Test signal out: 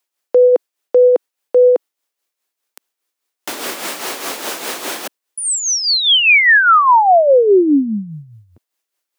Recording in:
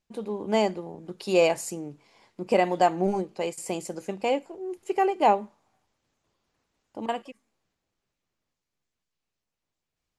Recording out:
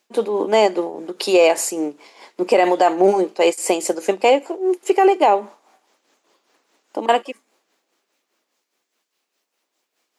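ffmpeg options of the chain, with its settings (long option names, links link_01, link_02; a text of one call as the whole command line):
ffmpeg -i in.wav -filter_complex "[0:a]highpass=frequency=290:width=0.5412,highpass=frequency=290:width=1.3066,acrossover=split=3000[link_01][link_02];[link_02]acompressor=threshold=-34dB:ratio=4:attack=1:release=60[link_03];[link_01][link_03]amix=inputs=2:normalize=0,tremolo=f=4.9:d=0.58,alimiter=level_in=21dB:limit=-1dB:release=50:level=0:latency=1,volume=-4dB" out.wav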